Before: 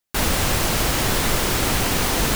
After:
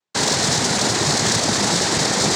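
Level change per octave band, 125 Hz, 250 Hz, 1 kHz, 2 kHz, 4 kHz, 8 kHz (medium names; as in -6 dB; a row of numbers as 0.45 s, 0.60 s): -0.5 dB, +2.5 dB, +2.0 dB, +1.0 dB, +5.5 dB, +5.5 dB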